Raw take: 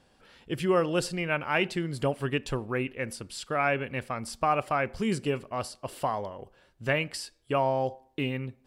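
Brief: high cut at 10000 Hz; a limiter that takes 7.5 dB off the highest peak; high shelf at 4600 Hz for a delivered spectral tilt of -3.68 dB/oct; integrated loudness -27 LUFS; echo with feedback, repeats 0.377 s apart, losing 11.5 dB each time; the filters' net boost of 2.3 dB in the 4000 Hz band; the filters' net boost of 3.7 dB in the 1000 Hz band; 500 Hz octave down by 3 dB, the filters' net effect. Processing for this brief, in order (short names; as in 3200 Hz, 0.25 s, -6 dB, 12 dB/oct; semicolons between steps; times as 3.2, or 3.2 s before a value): LPF 10000 Hz; bell 500 Hz -6 dB; bell 1000 Hz +7 dB; bell 4000 Hz +6 dB; high shelf 4600 Hz -5.5 dB; limiter -17 dBFS; feedback echo 0.377 s, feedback 27%, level -11.5 dB; gain +3.5 dB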